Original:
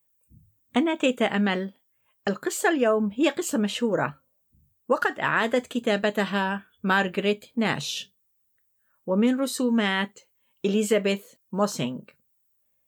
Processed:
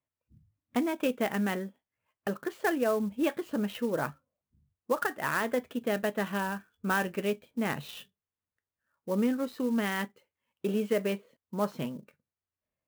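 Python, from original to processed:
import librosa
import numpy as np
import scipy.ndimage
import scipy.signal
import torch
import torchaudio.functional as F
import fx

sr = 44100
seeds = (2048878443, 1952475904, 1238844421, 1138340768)

y = scipy.signal.sosfilt(scipy.signal.butter(2, 2600.0, 'lowpass', fs=sr, output='sos'), x)
y = fx.clock_jitter(y, sr, seeds[0], jitter_ms=0.025)
y = F.gain(torch.from_numpy(y), -6.0).numpy()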